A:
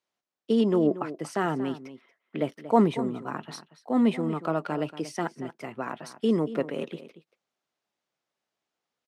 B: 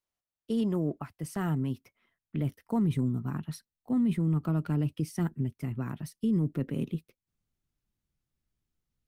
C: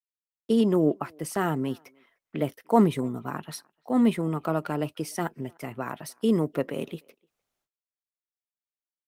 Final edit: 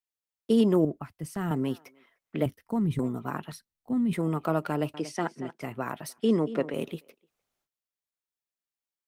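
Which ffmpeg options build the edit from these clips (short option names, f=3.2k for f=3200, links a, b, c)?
-filter_complex "[1:a]asplit=3[a][b][c];[0:a]asplit=2[d][e];[2:a]asplit=6[f][g][h][i][j][k];[f]atrim=end=0.852[l];[a]atrim=start=0.848:end=1.512[m];[g]atrim=start=1.508:end=2.462[n];[b]atrim=start=2.458:end=2.992[o];[h]atrim=start=2.988:end=3.522[p];[c]atrim=start=3.518:end=4.132[q];[i]atrim=start=4.128:end=4.942[r];[d]atrim=start=4.938:end=5.622[s];[j]atrim=start=5.618:end=6.182[t];[e]atrim=start=6.178:end=6.742[u];[k]atrim=start=6.738[v];[l][m]acrossfade=d=0.004:c1=hsin:c2=hsin[w];[w][n]acrossfade=d=0.004:c1=hsin:c2=hsin[x];[x][o]acrossfade=d=0.004:c1=hsin:c2=hsin[y];[y][p]acrossfade=d=0.004:c1=hsin:c2=hsin[z];[z][q]acrossfade=d=0.004:c1=hsin:c2=hsin[aa];[aa][r]acrossfade=d=0.004:c1=hsin:c2=hsin[ab];[ab][s]acrossfade=d=0.004:c1=hsin:c2=hsin[ac];[ac][t]acrossfade=d=0.004:c1=hsin:c2=hsin[ad];[ad][u]acrossfade=d=0.004:c1=hsin:c2=hsin[ae];[ae][v]acrossfade=d=0.004:c1=hsin:c2=hsin"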